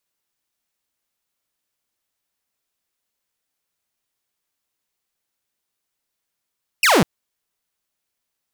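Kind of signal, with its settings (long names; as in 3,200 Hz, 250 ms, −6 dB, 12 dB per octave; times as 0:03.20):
single falling chirp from 2,900 Hz, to 140 Hz, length 0.20 s saw, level −9 dB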